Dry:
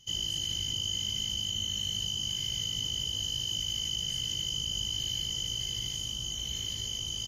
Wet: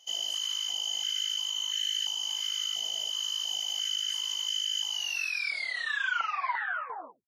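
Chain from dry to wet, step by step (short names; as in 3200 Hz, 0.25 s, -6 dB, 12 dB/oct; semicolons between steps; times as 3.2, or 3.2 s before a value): tape stop at the end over 2.37 s; stepped high-pass 2.9 Hz 680–1700 Hz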